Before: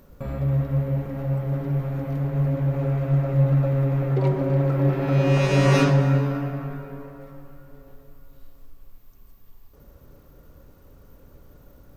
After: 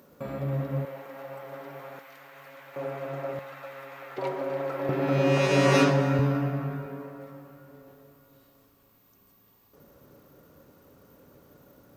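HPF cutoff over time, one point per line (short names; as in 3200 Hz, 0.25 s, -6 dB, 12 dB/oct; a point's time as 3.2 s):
210 Hz
from 0.85 s 700 Hz
from 1.99 s 1500 Hz
from 2.76 s 480 Hz
from 3.39 s 1200 Hz
from 4.18 s 550 Hz
from 4.89 s 210 Hz
from 6.19 s 78 Hz
from 6.86 s 160 Hz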